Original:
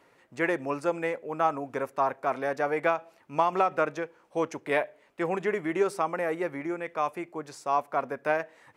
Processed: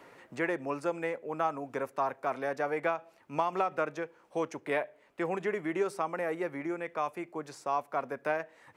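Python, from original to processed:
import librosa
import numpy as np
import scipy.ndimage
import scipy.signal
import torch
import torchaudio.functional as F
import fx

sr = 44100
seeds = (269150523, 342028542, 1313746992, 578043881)

y = fx.band_squash(x, sr, depth_pct=40)
y = y * 10.0 ** (-4.5 / 20.0)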